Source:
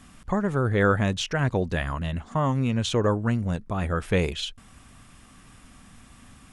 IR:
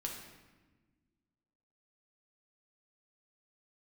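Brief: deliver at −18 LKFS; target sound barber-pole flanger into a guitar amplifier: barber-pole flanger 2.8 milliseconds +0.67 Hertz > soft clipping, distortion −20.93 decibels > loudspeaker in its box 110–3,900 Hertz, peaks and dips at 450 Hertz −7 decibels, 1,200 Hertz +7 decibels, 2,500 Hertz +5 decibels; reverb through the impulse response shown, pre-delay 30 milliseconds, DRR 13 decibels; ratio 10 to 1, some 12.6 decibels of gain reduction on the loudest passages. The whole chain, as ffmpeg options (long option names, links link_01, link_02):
-filter_complex "[0:a]acompressor=threshold=-30dB:ratio=10,asplit=2[link_01][link_02];[1:a]atrim=start_sample=2205,adelay=30[link_03];[link_02][link_03]afir=irnorm=-1:irlink=0,volume=-13dB[link_04];[link_01][link_04]amix=inputs=2:normalize=0,asplit=2[link_05][link_06];[link_06]adelay=2.8,afreqshift=0.67[link_07];[link_05][link_07]amix=inputs=2:normalize=1,asoftclip=threshold=-27dB,highpass=110,equalizer=frequency=450:width_type=q:width=4:gain=-7,equalizer=frequency=1200:width_type=q:width=4:gain=7,equalizer=frequency=2500:width_type=q:width=4:gain=5,lowpass=frequency=3900:width=0.5412,lowpass=frequency=3900:width=1.3066,volume=21.5dB"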